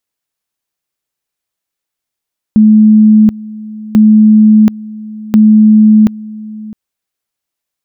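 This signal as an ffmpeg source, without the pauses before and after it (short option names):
-f lavfi -i "aevalsrc='pow(10,(-1.5-20.5*gte(mod(t,1.39),0.73))/20)*sin(2*PI*215*t)':d=4.17:s=44100"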